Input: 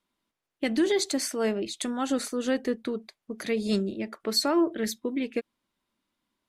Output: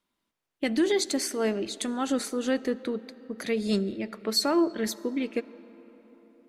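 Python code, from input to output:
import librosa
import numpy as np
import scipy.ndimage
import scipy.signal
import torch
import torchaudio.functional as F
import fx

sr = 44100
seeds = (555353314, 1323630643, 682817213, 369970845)

y = fx.rev_freeverb(x, sr, rt60_s=4.7, hf_ratio=0.5, predelay_ms=30, drr_db=18.0)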